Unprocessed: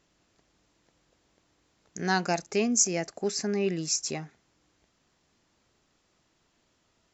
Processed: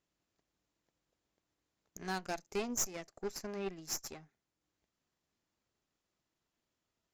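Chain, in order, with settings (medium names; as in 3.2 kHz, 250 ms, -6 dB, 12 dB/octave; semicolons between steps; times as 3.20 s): transient shaper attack +3 dB, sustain -3 dB; Chebyshev shaper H 3 -27 dB, 4 -14 dB, 7 -21 dB, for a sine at -9 dBFS; saturation -24 dBFS, distortion -6 dB; trim -4 dB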